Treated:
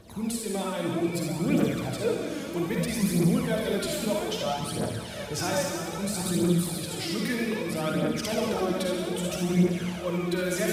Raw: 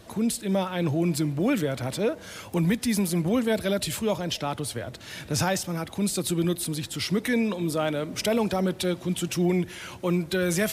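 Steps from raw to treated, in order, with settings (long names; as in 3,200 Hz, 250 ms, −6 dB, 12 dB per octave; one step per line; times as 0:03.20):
delay with a low-pass on its return 731 ms, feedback 61%, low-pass 3,200 Hz, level −10.5 dB
convolution reverb RT60 2.0 s, pre-delay 43 ms, DRR −2 dB
phase shifter 0.62 Hz, delay 3.7 ms, feedback 51%
level −7 dB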